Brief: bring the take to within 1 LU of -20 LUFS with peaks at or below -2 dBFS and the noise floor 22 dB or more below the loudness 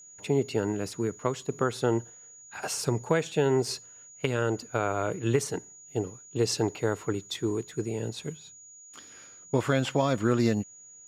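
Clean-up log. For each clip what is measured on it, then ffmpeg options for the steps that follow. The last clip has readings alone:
steady tone 6800 Hz; tone level -48 dBFS; loudness -29.5 LUFS; peak -10.5 dBFS; loudness target -20.0 LUFS
-> -af "bandreject=f=6.8k:w=30"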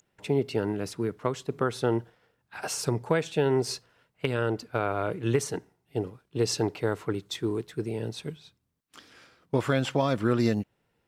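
steady tone none; loudness -29.5 LUFS; peak -10.5 dBFS; loudness target -20.0 LUFS
-> -af "volume=9.5dB,alimiter=limit=-2dB:level=0:latency=1"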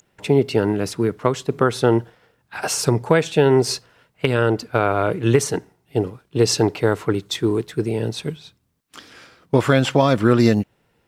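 loudness -20.0 LUFS; peak -2.0 dBFS; noise floor -66 dBFS

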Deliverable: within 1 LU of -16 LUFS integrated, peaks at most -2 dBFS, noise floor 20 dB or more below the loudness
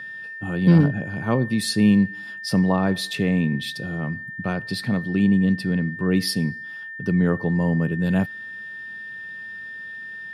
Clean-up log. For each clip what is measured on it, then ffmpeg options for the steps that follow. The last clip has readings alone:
steady tone 1800 Hz; tone level -33 dBFS; loudness -22.0 LUFS; peak -5.5 dBFS; loudness target -16.0 LUFS
-> -af "bandreject=f=1.8k:w=30"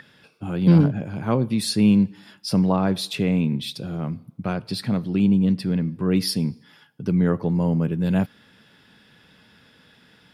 steady tone none; loudness -22.0 LUFS; peak -5.5 dBFS; loudness target -16.0 LUFS
-> -af "volume=6dB,alimiter=limit=-2dB:level=0:latency=1"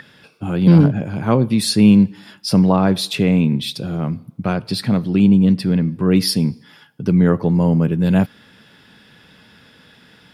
loudness -16.5 LUFS; peak -2.0 dBFS; noise floor -50 dBFS

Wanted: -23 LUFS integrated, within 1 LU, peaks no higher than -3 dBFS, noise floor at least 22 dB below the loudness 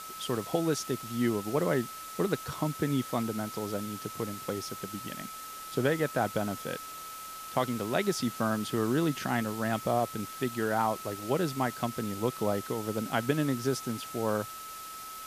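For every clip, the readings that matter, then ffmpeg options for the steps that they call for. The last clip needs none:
steady tone 1300 Hz; tone level -42 dBFS; noise floor -43 dBFS; noise floor target -54 dBFS; loudness -32.0 LUFS; peak -13.0 dBFS; loudness target -23.0 LUFS
-> -af "bandreject=f=1.3k:w=30"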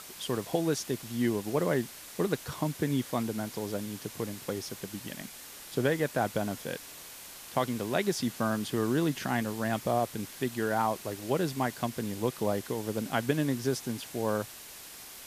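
steady tone none; noise floor -47 dBFS; noise floor target -54 dBFS
-> -af "afftdn=nr=7:nf=-47"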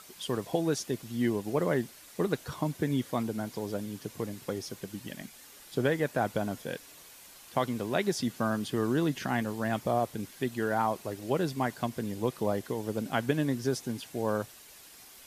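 noise floor -52 dBFS; noise floor target -54 dBFS
-> -af "afftdn=nr=6:nf=-52"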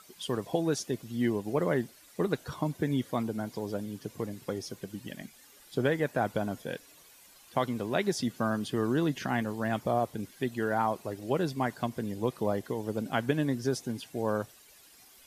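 noise floor -57 dBFS; loudness -32.0 LUFS; peak -13.5 dBFS; loudness target -23.0 LUFS
-> -af "volume=9dB"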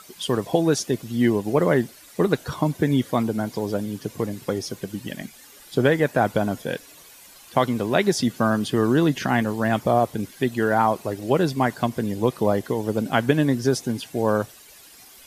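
loudness -23.0 LUFS; peak -4.5 dBFS; noise floor -48 dBFS

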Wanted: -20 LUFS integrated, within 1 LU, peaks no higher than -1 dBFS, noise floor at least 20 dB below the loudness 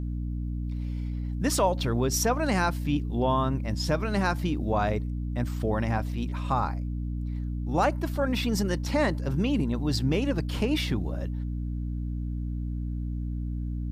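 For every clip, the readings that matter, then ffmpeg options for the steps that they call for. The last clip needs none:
hum 60 Hz; harmonics up to 300 Hz; hum level -29 dBFS; loudness -28.5 LUFS; peak -12.0 dBFS; loudness target -20.0 LUFS
-> -af "bandreject=f=60:t=h:w=4,bandreject=f=120:t=h:w=4,bandreject=f=180:t=h:w=4,bandreject=f=240:t=h:w=4,bandreject=f=300:t=h:w=4"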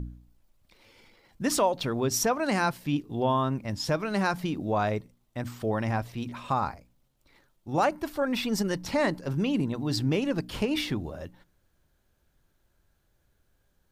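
hum none; loudness -28.5 LUFS; peak -13.5 dBFS; loudness target -20.0 LUFS
-> -af "volume=8.5dB"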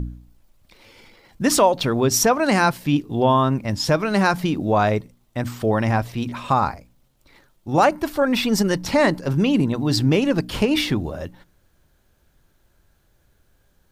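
loudness -20.0 LUFS; peak -5.0 dBFS; noise floor -63 dBFS

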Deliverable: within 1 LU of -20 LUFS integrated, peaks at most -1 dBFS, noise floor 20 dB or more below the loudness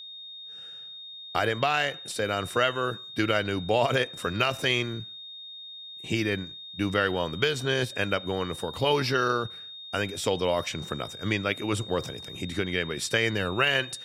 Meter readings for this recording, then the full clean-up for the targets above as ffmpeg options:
steady tone 3700 Hz; tone level -40 dBFS; loudness -27.5 LUFS; peak -9.5 dBFS; loudness target -20.0 LUFS
-> -af "bandreject=f=3.7k:w=30"
-af "volume=7.5dB"

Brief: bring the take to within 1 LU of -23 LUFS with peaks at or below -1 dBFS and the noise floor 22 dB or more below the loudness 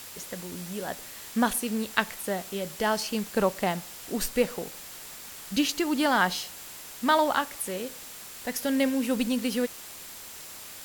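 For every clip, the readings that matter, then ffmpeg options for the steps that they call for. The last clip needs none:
steady tone 7400 Hz; tone level -54 dBFS; noise floor -43 dBFS; noise floor target -51 dBFS; loudness -28.5 LUFS; peak -5.0 dBFS; loudness target -23.0 LUFS
-> -af "bandreject=f=7.4k:w=30"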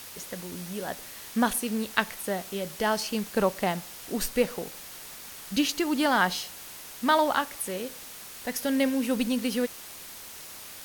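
steady tone none; noise floor -44 dBFS; noise floor target -51 dBFS
-> -af "afftdn=nr=7:nf=-44"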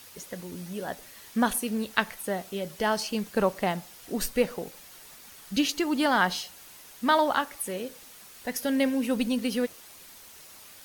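noise floor -50 dBFS; noise floor target -51 dBFS
-> -af "afftdn=nr=6:nf=-50"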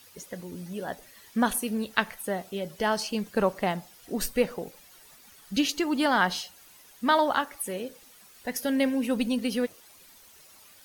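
noise floor -54 dBFS; loudness -28.5 LUFS; peak -5.0 dBFS; loudness target -23.0 LUFS
-> -af "volume=5.5dB,alimiter=limit=-1dB:level=0:latency=1"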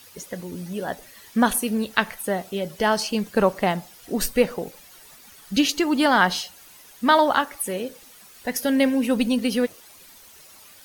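loudness -23.0 LUFS; peak -1.0 dBFS; noise floor -49 dBFS

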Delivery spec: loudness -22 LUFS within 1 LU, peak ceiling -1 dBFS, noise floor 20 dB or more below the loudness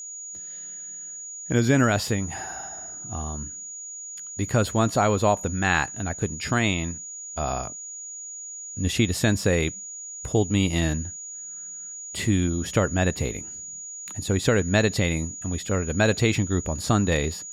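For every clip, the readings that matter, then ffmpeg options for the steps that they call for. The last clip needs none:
steady tone 6800 Hz; tone level -35 dBFS; loudness -25.5 LUFS; peak -6.5 dBFS; loudness target -22.0 LUFS
-> -af "bandreject=f=6.8k:w=30"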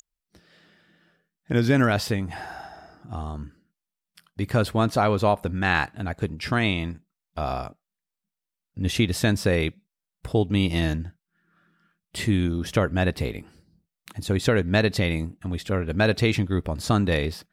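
steady tone none; loudness -24.5 LUFS; peak -6.5 dBFS; loudness target -22.0 LUFS
-> -af "volume=2.5dB"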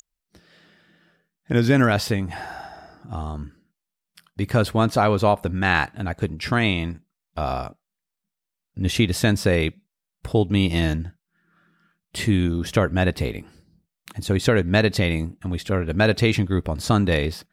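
loudness -22.0 LUFS; peak -4.0 dBFS; noise floor -85 dBFS

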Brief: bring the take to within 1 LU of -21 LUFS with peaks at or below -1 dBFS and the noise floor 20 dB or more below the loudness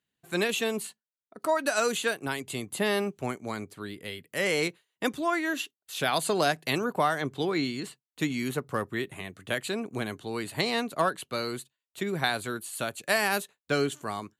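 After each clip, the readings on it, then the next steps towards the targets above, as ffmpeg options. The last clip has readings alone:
loudness -30.0 LUFS; peak -12.0 dBFS; loudness target -21.0 LUFS
-> -af "volume=9dB"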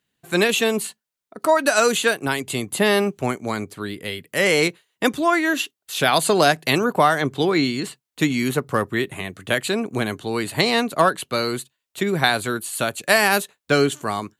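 loudness -21.0 LUFS; peak -3.0 dBFS; noise floor -83 dBFS

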